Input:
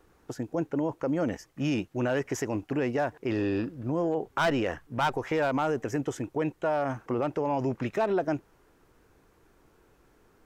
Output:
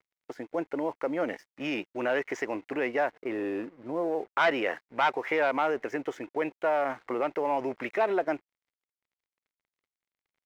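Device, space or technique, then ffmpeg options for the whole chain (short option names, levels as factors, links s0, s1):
pocket radio on a weak battery: -filter_complex "[0:a]asettb=1/sr,asplit=3[s0][s1][s2];[s0]atrim=end=3.124[s3];[s1]atrim=start=3.12:end=4.35,asetpts=PTS-STARTPTS,afade=t=in:d=0.004:c=qsin,afade=t=out:st=1.226:d=0.004:c=qsin,lowpass=f=1100:p=1[s4];[s2]atrim=start=4.346[s5];[s3][s4]acrossfade=d=0.004:c1=hsin:c2=qsin[s6];[s6][s5]acrossfade=d=0.004:c1=qsin:c2=hsin,highpass=390,lowpass=3700,aeval=exprs='sgn(val(0))*max(abs(val(0))-0.00126,0)':c=same,equalizer=f=2100:t=o:w=0.31:g=8,volume=1.26"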